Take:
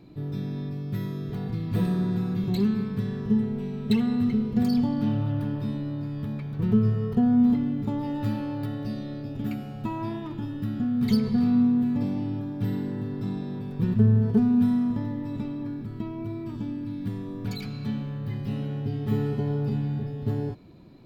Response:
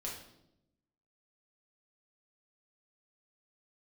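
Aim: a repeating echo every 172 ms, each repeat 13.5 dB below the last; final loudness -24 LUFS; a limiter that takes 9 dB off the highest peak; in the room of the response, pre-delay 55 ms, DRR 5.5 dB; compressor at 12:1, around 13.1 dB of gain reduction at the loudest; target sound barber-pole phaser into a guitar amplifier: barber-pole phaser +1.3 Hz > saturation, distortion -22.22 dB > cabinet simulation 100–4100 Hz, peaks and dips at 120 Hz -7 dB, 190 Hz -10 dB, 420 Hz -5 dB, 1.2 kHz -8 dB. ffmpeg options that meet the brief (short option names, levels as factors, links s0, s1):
-filter_complex "[0:a]acompressor=threshold=0.0355:ratio=12,alimiter=level_in=1.88:limit=0.0631:level=0:latency=1,volume=0.531,aecho=1:1:172|344:0.211|0.0444,asplit=2[s0][s1];[1:a]atrim=start_sample=2205,adelay=55[s2];[s1][s2]afir=irnorm=-1:irlink=0,volume=0.531[s3];[s0][s3]amix=inputs=2:normalize=0,asplit=2[s4][s5];[s5]afreqshift=1.3[s6];[s4][s6]amix=inputs=2:normalize=1,asoftclip=threshold=0.0422,highpass=100,equalizer=f=120:t=q:w=4:g=-7,equalizer=f=190:t=q:w=4:g=-10,equalizer=f=420:t=q:w=4:g=-5,equalizer=f=1200:t=q:w=4:g=-8,lowpass=f=4100:w=0.5412,lowpass=f=4100:w=1.3066,volume=8.91"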